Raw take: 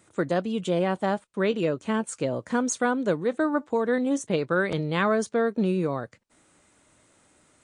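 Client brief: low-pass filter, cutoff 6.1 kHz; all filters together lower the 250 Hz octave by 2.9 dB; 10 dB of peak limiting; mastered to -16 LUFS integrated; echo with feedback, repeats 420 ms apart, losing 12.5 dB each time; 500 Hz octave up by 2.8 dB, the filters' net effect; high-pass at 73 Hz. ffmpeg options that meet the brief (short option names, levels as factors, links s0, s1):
-af "highpass=73,lowpass=6100,equalizer=f=250:t=o:g=-5,equalizer=f=500:t=o:g=4.5,alimiter=limit=0.112:level=0:latency=1,aecho=1:1:420|840|1260:0.237|0.0569|0.0137,volume=4.47"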